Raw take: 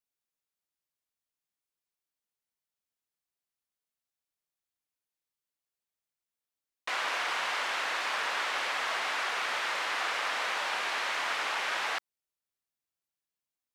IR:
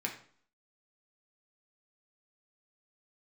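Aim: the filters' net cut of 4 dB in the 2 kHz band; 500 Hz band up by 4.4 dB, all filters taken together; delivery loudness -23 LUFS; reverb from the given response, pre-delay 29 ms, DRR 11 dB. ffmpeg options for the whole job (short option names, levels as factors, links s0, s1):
-filter_complex "[0:a]equalizer=f=500:t=o:g=6,equalizer=f=2000:t=o:g=-5.5,asplit=2[s0][s1];[1:a]atrim=start_sample=2205,adelay=29[s2];[s1][s2]afir=irnorm=-1:irlink=0,volume=0.2[s3];[s0][s3]amix=inputs=2:normalize=0,volume=2.82"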